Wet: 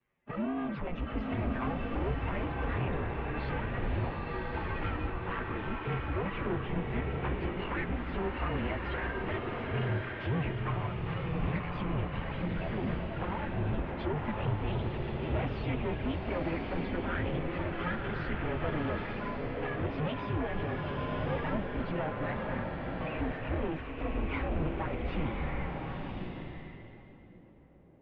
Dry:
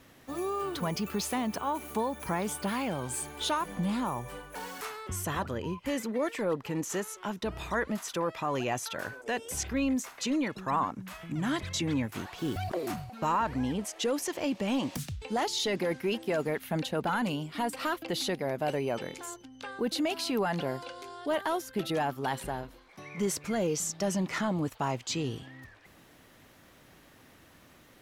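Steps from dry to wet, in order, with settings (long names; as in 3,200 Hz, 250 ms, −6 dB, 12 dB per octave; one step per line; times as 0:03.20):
partials spread apart or drawn together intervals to 108%
noise gate −49 dBFS, range −25 dB
in parallel at +1 dB: downward compressor 8 to 1, threshold −40 dBFS, peak gain reduction 14 dB
on the sum: brickwall limiter −24 dBFS, peak gain reduction 7 dB
flanger swept by the level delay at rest 9.8 ms, full sweep at −28 dBFS
asymmetric clip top −44.5 dBFS, bottom −28.5 dBFS
pitch-shifted copies added +5 semitones −13 dB
feedback echo with a band-pass in the loop 1,090 ms, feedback 57%, band-pass 440 Hz, level −18 dB
single-sideband voice off tune −150 Hz 160–3,000 Hz
slow-attack reverb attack 1,110 ms, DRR 0 dB
level +4 dB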